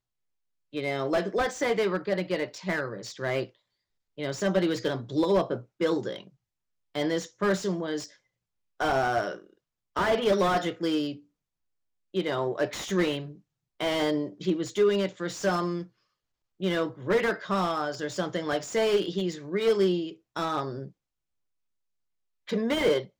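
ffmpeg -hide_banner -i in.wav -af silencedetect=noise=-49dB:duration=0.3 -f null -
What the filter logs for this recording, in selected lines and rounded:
silence_start: 0.00
silence_end: 0.73 | silence_duration: 0.73
silence_start: 3.50
silence_end: 4.18 | silence_duration: 0.68
silence_start: 6.28
silence_end: 6.95 | silence_duration: 0.67
silence_start: 8.15
silence_end: 8.80 | silence_duration: 0.65
silence_start: 9.53
silence_end: 9.96 | silence_duration: 0.43
silence_start: 11.20
silence_end: 12.14 | silence_duration: 0.94
silence_start: 13.40
silence_end: 13.80 | silence_duration: 0.40
silence_start: 15.87
silence_end: 16.60 | silence_duration: 0.73
silence_start: 20.91
silence_end: 22.47 | silence_duration: 1.57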